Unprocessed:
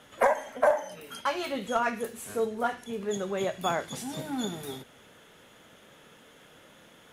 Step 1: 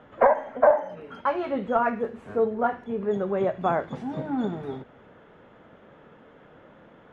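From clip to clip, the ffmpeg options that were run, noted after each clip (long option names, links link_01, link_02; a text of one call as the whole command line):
ffmpeg -i in.wav -af "lowpass=1300,volume=5.5dB" out.wav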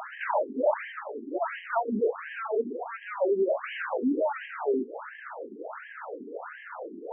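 ffmpeg -i in.wav -filter_complex "[0:a]asplit=2[link_01][link_02];[link_02]highpass=frequency=720:poles=1,volume=39dB,asoftclip=type=tanh:threshold=-5.5dB[link_03];[link_01][link_03]amix=inputs=2:normalize=0,lowpass=frequency=1300:poles=1,volume=-6dB,afftfilt=real='re*between(b*sr/1024,290*pow(2300/290,0.5+0.5*sin(2*PI*1.4*pts/sr))/1.41,290*pow(2300/290,0.5+0.5*sin(2*PI*1.4*pts/sr))*1.41)':imag='im*between(b*sr/1024,290*pow(2300/290,0.5+0.5*sin(2*PI*1.4*pts/sr))/1.41,290*pow(2300/290,0.5+0.5*sin(2*PI*1.4*pts/sr))*1.41)':win_size=1024:overlap=0.75,volume=-8.5dB" out.wav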